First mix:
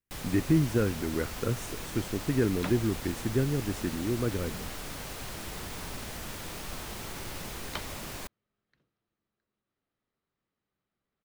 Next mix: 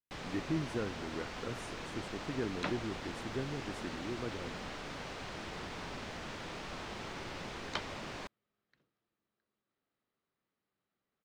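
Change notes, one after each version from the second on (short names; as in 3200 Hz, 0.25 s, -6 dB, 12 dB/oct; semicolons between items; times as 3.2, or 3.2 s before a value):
speech -9.0 dB; first sound: add air absorption 140 m; master: add low shelf 110 Hz -11 dB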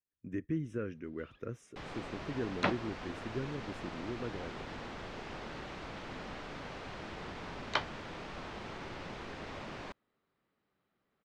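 first sound: entry +1.65 s; second sound +8.0 dB; master: add LPF 3000 Hz 6 dB/oct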